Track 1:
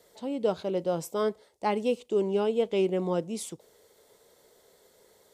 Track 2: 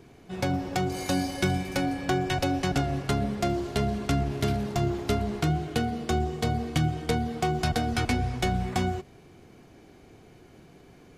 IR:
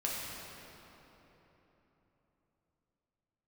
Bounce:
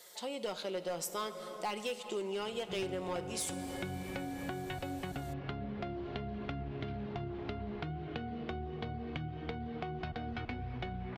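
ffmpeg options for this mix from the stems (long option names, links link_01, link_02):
-filter_complex "[0:a]tiltshelf=frequency=680:gain=-9.5,aecho=1:1:5.6:0.38,volume=23dB,asoftclip=hard,volume=-23dB,volume=-2dB,asplit=2[link_01][link_02];[link_02]volume=-14dB[link_03];[1:a]lowpass=frequency=3500:width=0.5412,lowpass=frequency=3500:width=1.3066,acompressor=threshold=-37dB:ratio=3,adelay=2400,volume=0.5dB[link_04];[2:a]atrim=start_sample=2205[link_05];[link_03][link_05]afir=irnorm=-1:irlink=0[link_06];[link_01][link_04][link_06]amix=inputs=3:normalize=0,acompressor=threshold=-37dB:ratio=3"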